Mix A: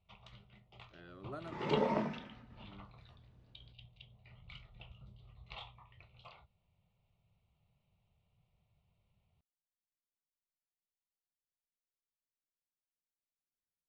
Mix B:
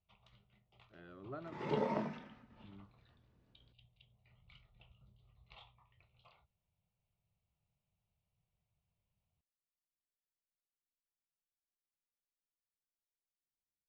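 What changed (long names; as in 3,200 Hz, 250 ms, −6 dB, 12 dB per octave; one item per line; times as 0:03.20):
speech: add high-frequency loss of the air 250 metres
first sound −10.0 dB
second sound −3.0 dB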